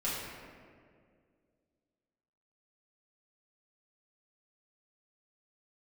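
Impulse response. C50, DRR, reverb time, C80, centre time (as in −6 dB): −1.0 dB, −8.5 dB, 2.1 s, 1.0 dB, 109 ms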